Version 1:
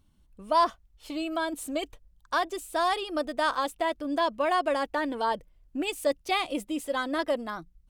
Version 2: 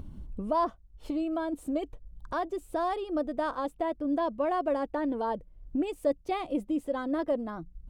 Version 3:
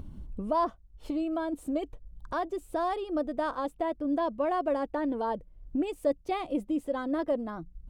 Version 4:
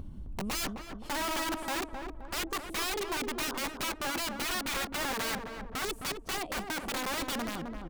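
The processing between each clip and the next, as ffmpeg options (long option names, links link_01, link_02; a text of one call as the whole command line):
ffmpeg -i in.wav -af "acompressor=mode=upward:threshold=-29dB:ratio=2.5,tiltshelf=frequency=1100:gain=10,volume=-6.5dB" out.wav
ffmpeg -i in.wav -af anull out.wav
ffmpeg -i in.wav -filter_complex "[0:a]aeval=exprs='(mod(28.2*val(0)+1,2)-1)/28.2':channel_layout=same,asplit=2[link_01][link_02];[link_02]adelay=262,lowpass=frequency=1100:poles=1,volume=-4dB,asplit=2[link_03][link_04];[link_04]adelay=262,lowpass=frequency=1100:poles=1,volume=0.5,asplit=2[link_05][link_06];[link_06]adelay=262,lowpass=frequency=1100:poles=1,volume=0.5,asplit=2[link_07][link_08];[link_08]adelay=262,lowpass=frequency=1100:poles=1,volume=0.5,asplit=2[link_09][link_10];[link_10]adelay=262,lowpass=frequency=1100:poles=1,volume=0.5,asplit=2[link_11][link_12];[link_12]adelay=262,lowpass=frequency=1100:poles=1,volume=0.5[link_13];[link_03][link_05][link_07][link_09][link_11][link_13]amix=inputs=6:normalize=0[link_14];[link_01][link_14]amix=inputs=2:normalize=0" out.wav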